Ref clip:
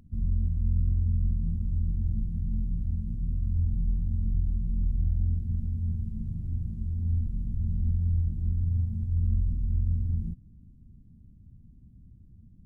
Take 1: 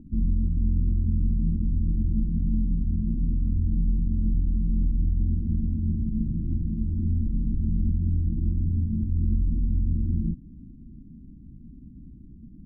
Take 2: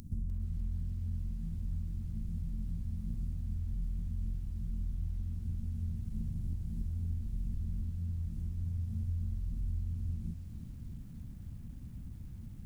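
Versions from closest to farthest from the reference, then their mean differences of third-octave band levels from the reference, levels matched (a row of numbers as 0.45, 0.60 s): 1, 2; 2.5, 7.0 dB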